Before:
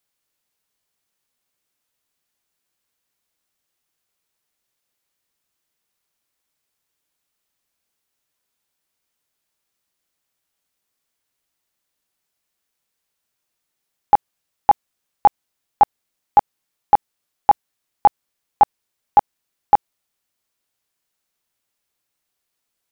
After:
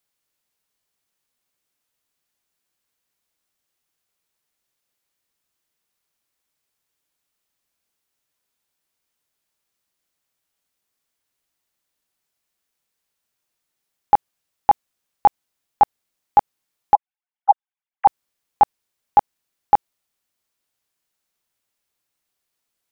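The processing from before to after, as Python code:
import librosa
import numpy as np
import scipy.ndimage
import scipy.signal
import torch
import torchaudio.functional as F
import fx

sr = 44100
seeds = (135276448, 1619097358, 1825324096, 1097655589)

y = fx.sine_speech(x, sr, at=(16.95, 18.07))
y = F.gain(torch.from_numpy(y), -1.0).numpy()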